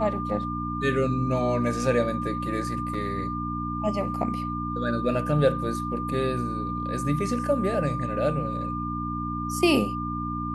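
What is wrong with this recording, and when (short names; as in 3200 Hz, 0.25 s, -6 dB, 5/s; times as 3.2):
hum 60 Hz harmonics 5 -32 dBFS
tone 1200 Hz -31 dBFS
2.94 gap 2.7 ms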